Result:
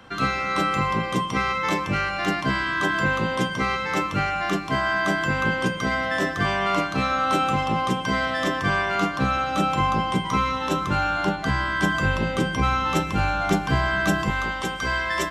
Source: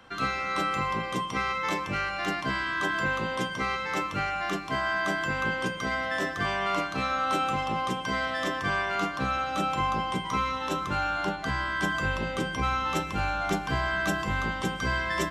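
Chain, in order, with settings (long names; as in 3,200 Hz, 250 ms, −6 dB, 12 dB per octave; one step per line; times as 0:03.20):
parametric band 140 Hz +4.5 dB 2.5 octaves, from 0:14.30 −7 dB
level +4.5 dB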